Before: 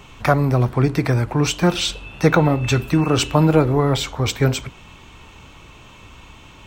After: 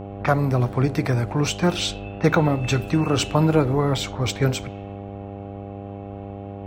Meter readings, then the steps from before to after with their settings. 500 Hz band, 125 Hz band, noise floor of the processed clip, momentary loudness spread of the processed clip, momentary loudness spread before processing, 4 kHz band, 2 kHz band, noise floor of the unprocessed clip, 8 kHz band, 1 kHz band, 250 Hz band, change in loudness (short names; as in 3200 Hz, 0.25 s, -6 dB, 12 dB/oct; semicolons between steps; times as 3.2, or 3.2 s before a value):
-3.0 dB, -3.5 dB, -35 dBFS, 16 LU, 6 LU, -3.5 dB, -3.5 dB, -44 dBFS, -3.5 dB, -3.0 dB, -3.0 dB, -3.5 dB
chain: low-pass opened by the level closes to 1300 Hz, open at -16 dBFS; buzz 100 Hz, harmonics 8, -31 dBFS -3 dB/oct; gain -3.5 dB